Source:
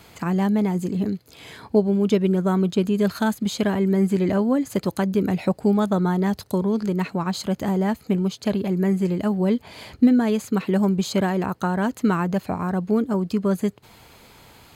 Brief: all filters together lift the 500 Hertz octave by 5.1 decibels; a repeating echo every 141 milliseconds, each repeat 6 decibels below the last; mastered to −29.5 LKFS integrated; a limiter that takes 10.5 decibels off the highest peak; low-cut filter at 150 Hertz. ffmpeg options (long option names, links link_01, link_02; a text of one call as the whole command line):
ffmpeg -i in.wav -af "highpass=150,equalizer=frequency=500:width_type=o:gain=7,alimiter=limit=-13dB:level=0:latency=1,aecho=1:1:141|282|423|564|705|846:0.501|0.251|0.125|0.0626|0.0313|0.0157,volume=-7.5dB" out.wav